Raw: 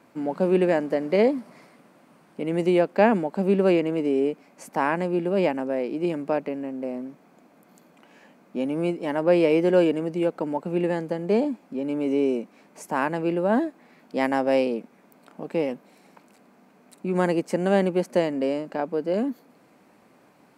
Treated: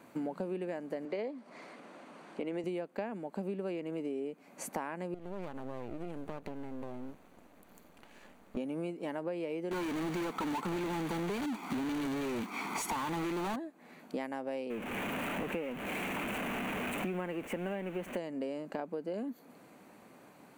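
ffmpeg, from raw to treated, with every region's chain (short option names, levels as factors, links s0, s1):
-filter_complex "[0:a]asettb=1/sr,asplit=3[s0][s1][s2];[s0]atrim=end=1.054[s3];[s1]atrim=start=1.05:end=2.64,asetpts=PTS-STARTPTS,afade=t=in:d=0.004:c=qsin,afade=t=out:st=1.586:d=0.004:c=qsin,acompressor=mode=upward:threshold=0.00794:ratio=2.5:attack=3.2:release=140:knee=2.83:detection=peak,highpass=260,lowpass=6000[s4];[s2]atrim=start=2.636[s5];[s3][s4]acrossfade=d=0.004:c1=hsin:c2=qsin[s6];[s6][s5]acrossfade=d=0.004:c1=qsin:c2=hsin,asettb=1/sr,asplit=3[s7][s8][s9];[s7]atrim=end=5.144[s10];[s8]atrim=start=5.14:end=8.57,asetpts=PTS-STARTPTS,afade=t=in:d=0.004:c=qsin,afade=t=out:st=3.426:d=0.004:c=qsin,acompressor=threshold=0.02:ratio=4:attack=3.2:release=140:knee=1:detection=peak,aeval=exprs='max(val(0),0)':c=same[s11];[s9]atrim=start=8.566[s12];[s10][s11]acrossfade=d=0.004:c1=hsin:c2=qsin[s13];[s13][s12]acrossfade=d=0.004:c1=qsin:c2=hsin,asettb=1/sr,asplit=3[s14][s15][s16];[s14]atrim=end=9.714[s17];[s15]atrim=start=9.71:end=13.56,asetpts=PTS-STARTPTS,afade=t=in:d=0.004:c=qsin,afade=t=out:st=3.846:d=0.004:c=qsin,aecho=1:1:0.9:0.87,atrim=end_sample=169785,acrusher=bits=3:mode=log:mix=0:aa=0.000001,asplit=2[s18][s19];[s19]highpass=f=720:p=1,volume=44.7,asoftclip=type=tanh:threshold=0.266[s20];[s18][s20]amix=inputs=2:normalize=0,lowpass=f=2700:p=1,volume=0.501[s21];[s16]atrim=start=13.556[s22];[s17][s21]acrossfade=d=0.004:c1=hsin:c2=qsin[s23];[s23][s22]acrossfade=d=0.004:c1=qsin:c2=hsin,asettb=1/sr,asplit=3[s24][s25][s26];[s24]atrim=end=14.704[s27];[s25]atrim=start=14.7:end=18.17,asetpts=PTS-STARTPTS,afade=t=in:d=0.004:c=qsin,afade=t=out:st=3.466:d=0.004:c=qsin,aeval=exprs='val(0)+0.5*0.0398*sgn(val(0))':c=same,highshelf=f=3400:t=q:w=3:g=-8.5[s28];[s26]atrim=start=18.166[s29];[s27][s28]acrossfade=d=0.004:c1=hsin:c2=qsin[s30];[s30][s29]acrossfade=d=0.004:c1=qsin:c2=hsin,highshelf=f=7900:g=4.5,acompressor=threshold=0.02:ratio=12,bandreject=f=5200:w=7.5"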